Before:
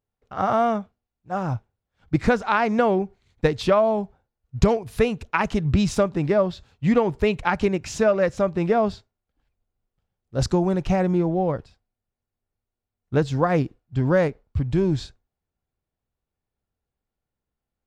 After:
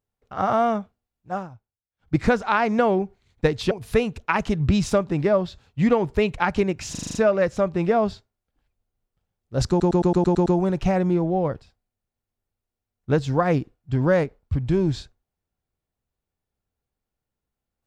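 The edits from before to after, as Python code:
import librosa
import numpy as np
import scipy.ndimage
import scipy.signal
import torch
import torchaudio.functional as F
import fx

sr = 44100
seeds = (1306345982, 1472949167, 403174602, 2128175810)

y = fx.edit(x, sr, fx.fade_down_up(start_s=1.33, length_s=0.81, db=-19.0, fade_s=0.16),
    fx.cut(start_s=3.71, length_s=1.05),
    fx.stutter(start_s=7.96, slice_s=0.04, count=7),
    fx.stutter(start_s=10.5, slice_s=0.11, count=8), tone=tone)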